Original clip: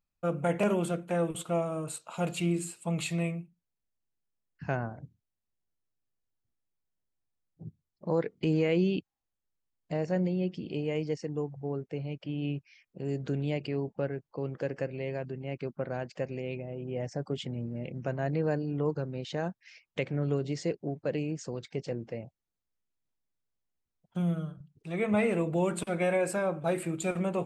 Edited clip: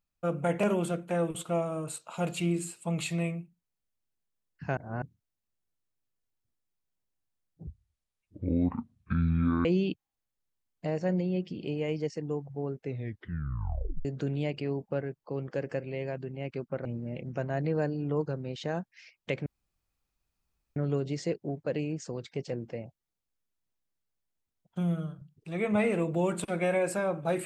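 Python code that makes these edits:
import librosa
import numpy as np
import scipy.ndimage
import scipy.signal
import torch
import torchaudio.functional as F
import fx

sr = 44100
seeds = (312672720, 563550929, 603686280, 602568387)

y = fx.edit(x, sr, fx.reverse_span(start_s=4.77, length_s=0.25),
    fx.speed_span(start_s=7.67, length_s=1.05, speed=0.53),
    fx.tape_stop(start_s=11.88, length_s=1.24),
    fx.cut(start_s=15.92, length_s=1.62),
    fx.insert_room_tone(at_s=20.15, length_s=1.3), tone=tone)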